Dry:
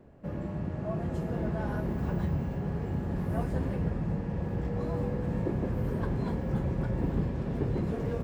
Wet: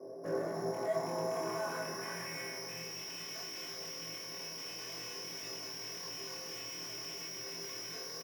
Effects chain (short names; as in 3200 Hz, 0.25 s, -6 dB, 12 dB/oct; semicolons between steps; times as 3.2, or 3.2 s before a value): rattling part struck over -27 dBFS, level -22 dBFS; bell 1400 Hz -6.5 dB 0.41 oct; resonator 130 Hz, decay 0.97 s, harmonics all, mix 80%; careless resampling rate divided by 8×, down filtered, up zero stuff; band-pass sweep 560 Hz -> 2900 Hz, 0.33–2.99; tube stage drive 61 dB, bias 0.25; bell 3000 Hz -12.5 dB 1.7 oct; notch 3100 Hz, Q 19; doubler 25 ms -2 dB; reverb RT60 0.35 s, pre-delay 3 ms, DRR 0.5 dB; gain +17.5 dB